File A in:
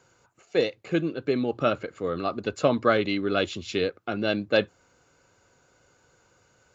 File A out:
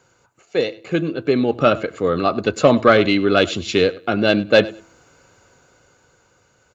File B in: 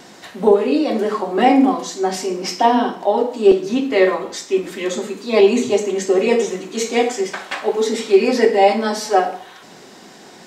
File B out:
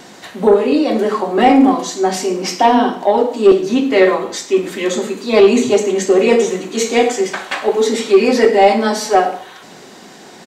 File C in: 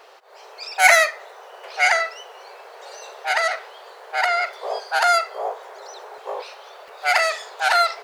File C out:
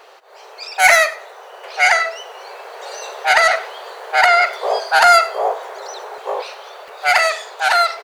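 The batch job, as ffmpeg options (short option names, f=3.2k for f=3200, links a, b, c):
-af "bandreject=f=5.2k:w=21,bandreject=f=330.8:t=h:w=4,bandreject=f=661.6:t=h:w=4,bandreject=f=992.4:t=h:w=4,dynaudnorm=f=200:g=13:m=11.5dB,asoftclip=type=tanh:threshold=-4dB,aecho=1:1:99|198:0.1|0.021,volume=3.5dB"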